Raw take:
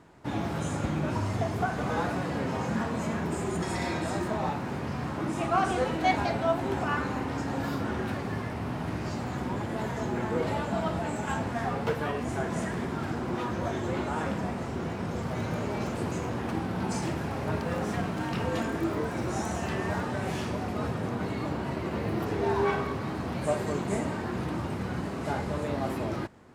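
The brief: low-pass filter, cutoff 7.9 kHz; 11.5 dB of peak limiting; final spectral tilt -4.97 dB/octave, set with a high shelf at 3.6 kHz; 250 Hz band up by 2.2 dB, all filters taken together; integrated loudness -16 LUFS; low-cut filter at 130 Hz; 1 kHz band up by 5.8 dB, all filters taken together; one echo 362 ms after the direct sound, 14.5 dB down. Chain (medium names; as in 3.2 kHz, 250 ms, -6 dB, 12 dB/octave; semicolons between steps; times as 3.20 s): high-pass 130 Hz; low-pass 7.9 kHz; peaking EQ 250 Hz +3 dB; peaking EQ 1 kHz +7 dB; treble shelf 3.6 kHz +5.5 dB; peak limiter -19.5 dBFS; delay 362 ms -14.5 dB; trim +13.5 dB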